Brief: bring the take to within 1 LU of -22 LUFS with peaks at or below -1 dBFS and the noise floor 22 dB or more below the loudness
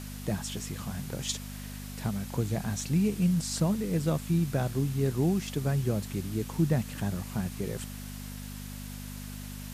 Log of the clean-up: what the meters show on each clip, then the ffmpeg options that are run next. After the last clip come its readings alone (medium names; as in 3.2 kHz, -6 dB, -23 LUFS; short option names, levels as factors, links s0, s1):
hum 50 Hz; highest harmonic 250 Hz; hum level -40 dBFS; noise floor -40 dBFS; noise floor target -54 dBFS; loudness -31.5 LUFS; peak level -16.0 dBFS; loudness target -22.0 LUFS
-> -af "bandreject=f=50:t=h:w=4,bandreject=f=100:t=h:w=4,bandreject=f=150:t=h:w=4,bandreject=f=200:t=h:w=4,bandreject=f=250:t=h:w=4"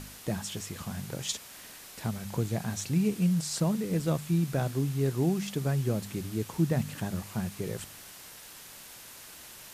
hum not found; noise floor -48 dBFS; noise floor target -53 dBFS
-> -af "afftdn=nr=6:nf=-48"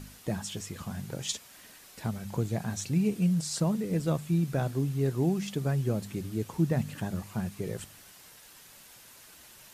noise floor -53 dBFS; loudness -31.0 LUFS; peak level -16.0 dBFS; loudness target -22.0 LUFS
-> -af "volume=2.82"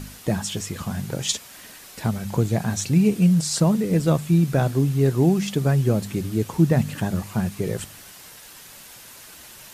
loudness -22.0 LUFS; peak level -7.0 dBFS; noise floor -44 dBFS